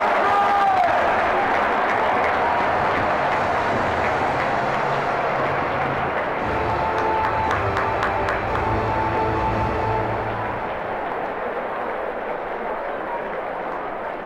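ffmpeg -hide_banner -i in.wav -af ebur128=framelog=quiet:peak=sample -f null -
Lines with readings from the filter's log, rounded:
Integrated loudness:
  I:         -21.6 LUFS
  Threshold: -31.6 LUFS
Loudness range:
  LRA:         7.0 LU
  Threshold: -41.8 LUFS
  LRA low:   -26.3 LUFS
  LRA high:  -19.3 LUFS
Sample peak:
  Peak:      -12.0 dBFS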